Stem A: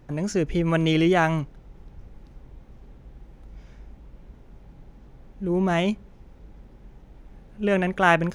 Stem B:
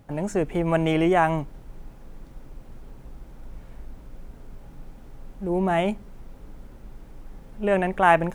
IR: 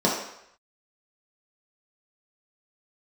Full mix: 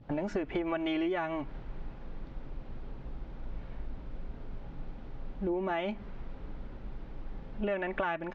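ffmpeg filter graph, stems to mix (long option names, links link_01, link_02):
-filter_complex "[0:a]volume=-7.5dB[link_01];[1:a]adynamicequalizer=threshold=0.0158:dfrequency=1700:dqfactor=0.7:tfrequency=1700:tqfactor=0.7:attack=5:release=100:ratio=0.375:range=2.5:mode=boostabove:tftype=bell,acompressor=threshold=-24dB:ratio=6,adelay=3.4,volume=0.5dB,asplit=2[link_02][link_03];[link_03]apad=whole_len=368165[link_04];[link_01][link_04]sidechaingate=range=-33dB:threshold=-33dB:ratio=16:detection=peak[link_05];[link_05][link_02]amix=inputs=2:normalize=0,lowpass=frequency=4300:width=0.5412,lowpass=frequency=4300:width=1.3066,acompressor=threshold=-29dB:ratio=6"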